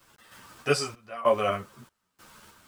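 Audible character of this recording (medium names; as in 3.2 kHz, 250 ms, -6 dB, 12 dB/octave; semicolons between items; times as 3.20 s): a quantiser's noise floor 10-bit, dither none; random-step tremolo 3.2 Hz, depth 95%; a shimmering, thickened sound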